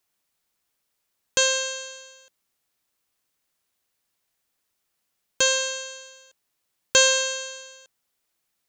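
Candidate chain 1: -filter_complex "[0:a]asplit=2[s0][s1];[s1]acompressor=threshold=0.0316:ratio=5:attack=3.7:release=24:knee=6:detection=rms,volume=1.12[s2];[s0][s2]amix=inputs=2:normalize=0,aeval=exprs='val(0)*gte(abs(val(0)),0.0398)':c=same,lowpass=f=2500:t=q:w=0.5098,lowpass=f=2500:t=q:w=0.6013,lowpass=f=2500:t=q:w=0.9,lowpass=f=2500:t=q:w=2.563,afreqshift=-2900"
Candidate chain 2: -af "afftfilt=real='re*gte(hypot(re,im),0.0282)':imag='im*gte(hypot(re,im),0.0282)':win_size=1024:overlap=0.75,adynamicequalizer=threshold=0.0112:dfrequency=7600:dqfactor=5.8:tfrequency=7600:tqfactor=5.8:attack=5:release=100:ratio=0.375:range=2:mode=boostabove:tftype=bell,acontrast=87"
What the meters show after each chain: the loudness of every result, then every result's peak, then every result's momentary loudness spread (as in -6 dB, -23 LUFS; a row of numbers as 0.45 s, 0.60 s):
-24.0 LUFS, -15.0 LUFS; -7.5 dBFS, -2.0 dBFS; 16 LU, 19 LU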